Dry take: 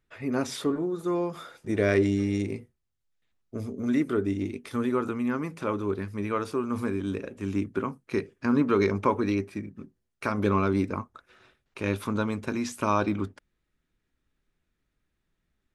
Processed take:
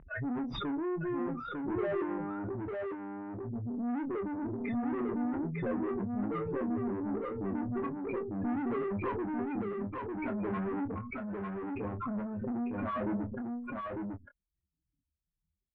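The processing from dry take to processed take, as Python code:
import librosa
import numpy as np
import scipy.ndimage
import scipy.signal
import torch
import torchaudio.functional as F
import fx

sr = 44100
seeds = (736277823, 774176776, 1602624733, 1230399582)

y = fx.spec_expand(x, sr, power=3.9)
y = scipy.signal.sosfilt(scipy.signal.butter(2, 86.0, 'highpass', fs=sr, output='sos'), y)
y = fx.tube_stage(y, sr, drive_db=35.0, bias=0.3)
y = scipy.signal.sosfilt(scipy.signal.butter(4, 2100.0, 'lowpass', fs=sr, output='sos'), y)
y = fx.doubler(y, sr, ms=25.0, db=-8.5)
y = y + 10.0 ** (-3.5 / 20.0) * np.pad(y, (int(900 * sr / 1000.0), 0))[:len(y)]
y = fx.pre_swell(y, sr, db_per_s=37.0)
y = F.gain(torch.from_numpy(y), 1.0).numpy()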